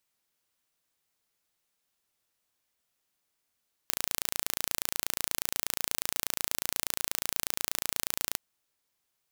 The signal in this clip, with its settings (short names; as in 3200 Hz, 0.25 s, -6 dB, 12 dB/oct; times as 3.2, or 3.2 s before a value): pulse train 28.3/s, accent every 0, -2 dBFS 4.47 s